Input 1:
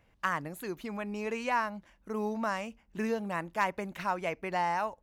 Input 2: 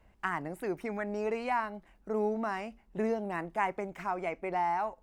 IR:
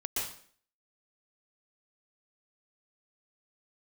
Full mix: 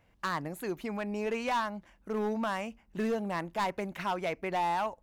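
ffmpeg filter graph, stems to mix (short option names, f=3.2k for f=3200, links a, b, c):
-filter_complex "[0:a]volume=-0.5dB[a];[1:a]volume=-9.5dB[b];[a][b]amix=inputs=2:normalize=0,asoftclip=type=hard:threshold=-25.5dB"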